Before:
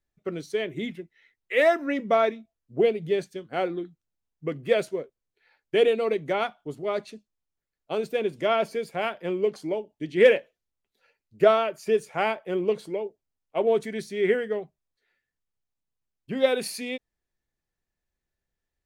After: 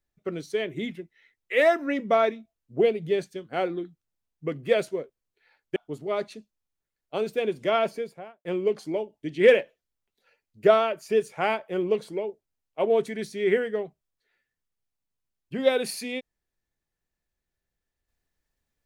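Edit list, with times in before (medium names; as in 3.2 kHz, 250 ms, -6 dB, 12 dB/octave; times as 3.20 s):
5.76–6.53 s: delete
8.58–9.22 s: studio fade out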